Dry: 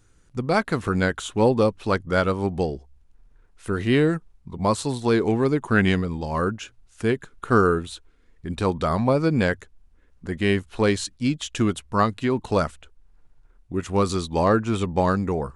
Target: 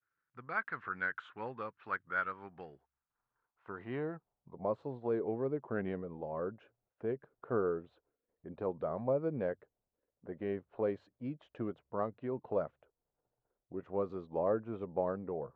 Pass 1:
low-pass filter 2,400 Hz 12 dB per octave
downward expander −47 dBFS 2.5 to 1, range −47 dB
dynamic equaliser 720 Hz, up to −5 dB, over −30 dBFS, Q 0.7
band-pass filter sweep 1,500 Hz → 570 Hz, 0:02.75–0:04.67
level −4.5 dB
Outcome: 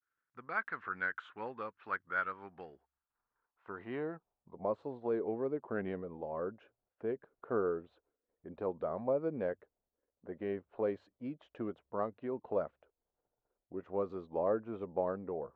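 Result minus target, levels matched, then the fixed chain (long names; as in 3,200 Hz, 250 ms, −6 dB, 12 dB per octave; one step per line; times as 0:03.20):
125 Hz band −4.5 dB
low-pass filter 2,400 Hz 12 dB per octave
parametric band 130 Hz +8 dB 0.66 octaves
downward expander −47 dBFS 2.5 to 1, range −47 dB
dynamic equaliser 720 Hz, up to −5 dB, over −30 dBFS, Q 0.7
band-pass filter sweep 1,500 Hz → 570 Hz, 0:02.75–0:04.67
level −4.5 dB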